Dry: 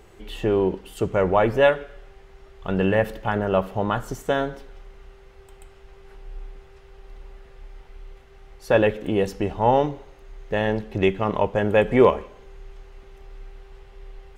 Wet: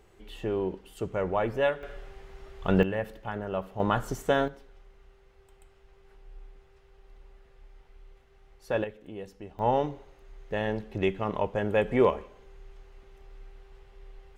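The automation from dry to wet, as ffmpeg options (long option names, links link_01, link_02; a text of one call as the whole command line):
ffmpeg -i in.wav -af "asetnsamples=nb_out_samples=441:pad=0,asendcmd='1.83 volume volume 1dB;2.83 volume volume -11dB;3.8 volume volume -2dB;4.48 volume volume -10.5dB;8.84 volume volume -18.5dB;9.59 volume volume -7dB',volume=-9dB" out.wav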